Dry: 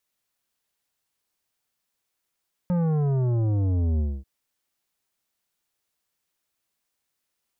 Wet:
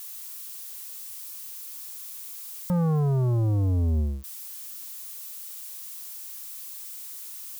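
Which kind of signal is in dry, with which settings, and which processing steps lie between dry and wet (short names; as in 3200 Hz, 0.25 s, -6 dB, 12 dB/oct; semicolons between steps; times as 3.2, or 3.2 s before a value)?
sub drop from 180 Hz, over 1.54 s, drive 11 dB, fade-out 0.25 s, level -21.5 dB
switching spikes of -36 dBFS; bell 1100 Hz +8 dB 0.33 oct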